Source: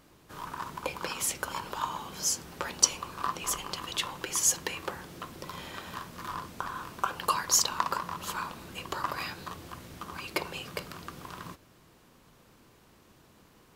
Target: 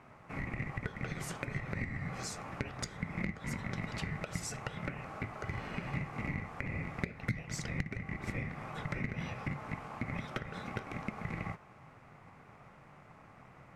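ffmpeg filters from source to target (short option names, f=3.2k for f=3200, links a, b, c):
-filter_complex "[0:a]lowpass=8.1k,highshelf=f=2k:t=q:w=1.5:g=-10,aeval=exprs='val(0)*sin(2*PI*960*n/s)':c=same,asplit=2[a][b];[b]acrusher=bits=2:mix=0:aa=0.5,volume=-6dB[c];[a][c]amix=inputs=2:normalize=0,flanger=delay=3:depth=8.2:regen=-82:speed=0.37:shape=sinusoidal,acompressor=threshold=-45dB:ratio=10,equalizer=f=140:w=1:g=14,volume=8dB"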